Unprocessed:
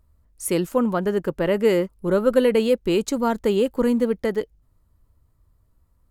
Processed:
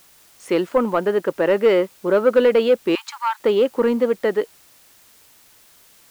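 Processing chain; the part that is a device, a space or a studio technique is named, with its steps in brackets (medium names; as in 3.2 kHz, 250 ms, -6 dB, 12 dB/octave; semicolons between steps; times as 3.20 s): tape answering machine (band-pass 340–3300 Hz; saturation -12.5 dBFS, distortion -20 dB; wow and flutter; white noise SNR 32 dB); 2.95–3.40 s: steep high-pass 810 Hz 96 dB/octave; trim +6 dB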